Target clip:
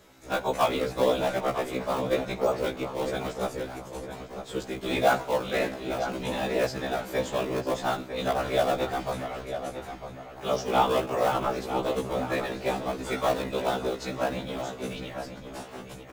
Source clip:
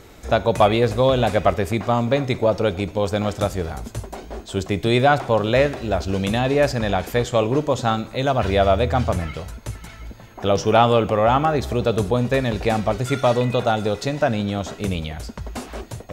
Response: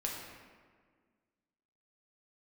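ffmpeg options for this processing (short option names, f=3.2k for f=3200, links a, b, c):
-filter_complex "[0:a]highpass=97,equalizer=f=130:t=o:w=2.4:g=-7,afftfilt=real='hypot(re,im)*cos(2*PI*random(0))':imag='hypot(re,im)*sin(2*PI*random(1))':win_size=512:overlap=0.75,asplit=2[a][b];[b]acrusher=samples=29:mix=1:aa=0.000001:lfo=1:lforange=46.4:lforate=1.5,volume=-8dB[c];[a][c]amix=inputs=2:normalize=0,asplit=2[d][e];[e]adelay=952,lowpass=f=3.3k:p=1,volume=-9dB,asplit=2[f][g];[g]adelay=952,lowpass=f=3.3k:p=1,volume=0.38,asplit=2[h][i];[i]adelay=952,lowpass=f=3.3k:p=1,volume=0.38,asplit=2[j][k];[k]adelay=952,lowpass=f=3.3k:p=1,volume=0.38[l];[d][f][h][j][l]amix=inputs=5:normalize=0,acrossover=split=150[m][n];[m]asoftclip=type=tanh:threshold=-38dB[o];[o][n]amix=inputs=2:normalize=0,afftfilt=real='re*1.73*eq(mod(b,3),0)':imag='im*1.73*eq(mod(b,3),0)':win_size=2048:overlap=0.75"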